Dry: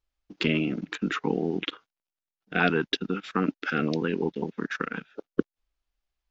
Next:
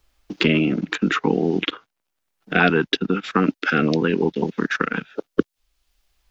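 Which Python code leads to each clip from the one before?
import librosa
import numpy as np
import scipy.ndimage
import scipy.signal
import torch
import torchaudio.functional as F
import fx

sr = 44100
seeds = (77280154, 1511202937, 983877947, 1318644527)

y = fx.band_squash(x, sr, depth_pct=40)
y = F.gain(torch.from_numpy(y), 7.5).numpy()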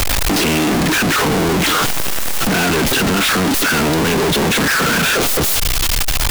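y = np.sign(x) * np.sqrt(np.mean(np.square(x)))
y = F.gain(torch.from_numpy(y), 7.5).numpy()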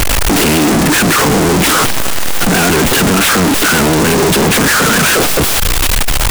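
y = fx.vibrato(x, sr, rate_hz=7.5, depth_cents=89.0)
y = y + 10.0 ** (-19.0 / 20.0) * np.pad(y, (int(309 * sr / 1000.0), 0))[:len(y)]
y = fx.noise_mod_delay(y, sr, seeds[0], noise_hz=5600.0, depth_ms=0.053)
y = F.gain(torch.from_numpy(y), 5.0).numpy()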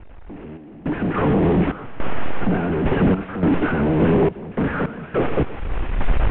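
y = fx.cvsd(x, sr, bps=16000)
y = y + 10.0 ** (-11.5 / 20.0) * np.pad(y, (int(123 * sr / 1000.0), 0))[:len(y)]
y = fx.tremolo_random(y, sr, seeds[1], hz=3.5, depth_pct=95)
y = F.gain(torch.from_numpy(y), -2.5).numpy()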